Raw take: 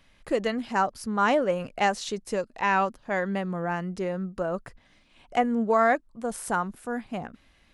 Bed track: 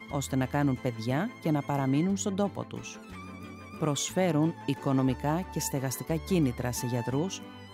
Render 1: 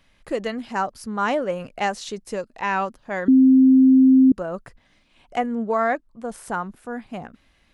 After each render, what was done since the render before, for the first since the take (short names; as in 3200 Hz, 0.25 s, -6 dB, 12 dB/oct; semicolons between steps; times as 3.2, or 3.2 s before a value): 3.28–4.32 bleep 262 Hz -9.5 dBFS; 5.46–7.02 high shelf 6000 Hz -7.5 dB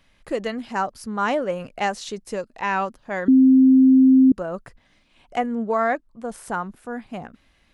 nothing audible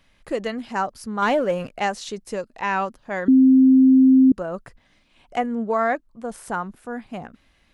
1.22–1.75 sample leveller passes 1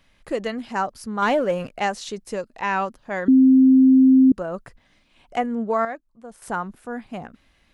5.85–6.42 gain -9.5 dB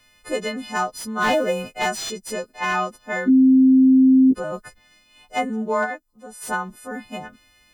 frequency quantiser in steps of 3 st; slew limiter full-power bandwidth 210 Hz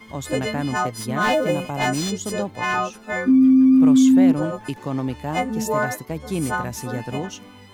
add bed track +1 dB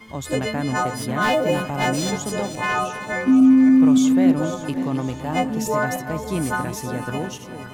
regenerating reverse delay 0.284 s, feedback 65%, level -10.5 dB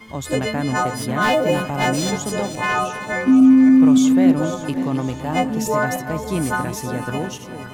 gain +2 dB